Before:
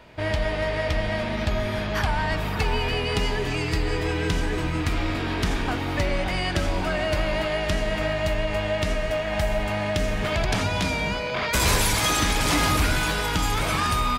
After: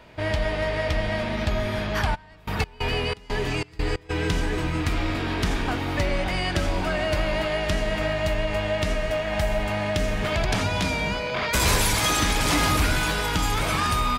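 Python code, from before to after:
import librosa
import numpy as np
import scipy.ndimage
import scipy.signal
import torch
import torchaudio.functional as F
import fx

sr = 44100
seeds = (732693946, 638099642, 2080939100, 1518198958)

y = fx.step_gate(x, sr, bpm=91, pattern='.x..x.xx.xx', floor_db=-24.0, edge_ms=4.5, at=(2.14, 4.09), fade=0.02)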